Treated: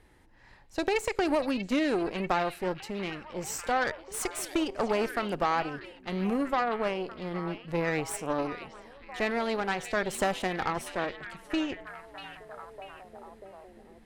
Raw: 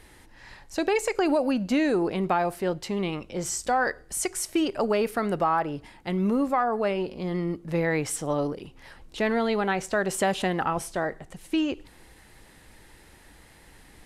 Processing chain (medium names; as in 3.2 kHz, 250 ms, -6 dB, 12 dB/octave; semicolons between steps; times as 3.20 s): Chebyshev shaper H 3 -15 dB, 6 -23 dB, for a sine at -12 dBFS; repeats whose band climbs or falls 640 ms, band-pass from 3.3 kHz, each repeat -0.7 oct, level -6 dB; tape noise reduction on one side only decoder only